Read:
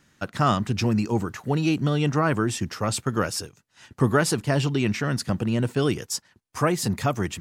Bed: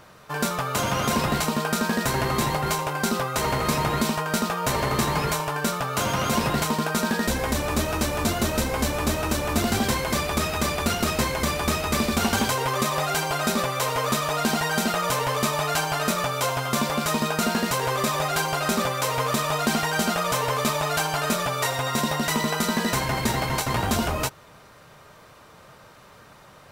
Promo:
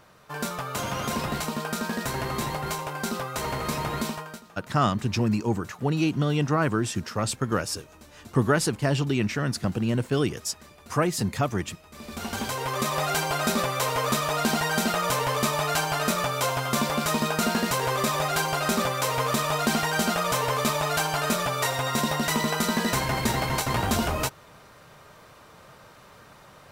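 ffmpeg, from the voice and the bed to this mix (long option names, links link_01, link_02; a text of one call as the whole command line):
ffmpeg -i stem1.wav -i stem2.wav -filter_complex "[0:a]adelay=4350,volume=-1.5dB[link_01];[1:a]volume=19dB,afade=type=out:start_time=4.05:duration=0.37:silence=0.1,afade=type=in:start_time=11.92:duration=1.15:silence=0.0595662[link_02];[link_01][link_02]amix=inputs=2:normalize=0" out.wav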